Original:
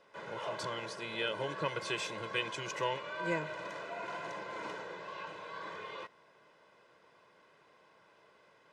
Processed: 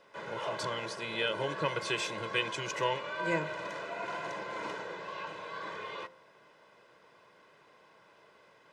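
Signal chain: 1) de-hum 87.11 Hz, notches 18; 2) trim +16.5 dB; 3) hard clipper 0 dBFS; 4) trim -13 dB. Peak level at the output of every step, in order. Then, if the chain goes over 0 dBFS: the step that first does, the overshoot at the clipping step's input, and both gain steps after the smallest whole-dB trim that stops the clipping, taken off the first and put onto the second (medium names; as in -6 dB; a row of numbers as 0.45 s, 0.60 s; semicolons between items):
-20.0 dBFS, -3.5 dBFS, -3.5 dBFS, -16.5 dBFS; nothing clips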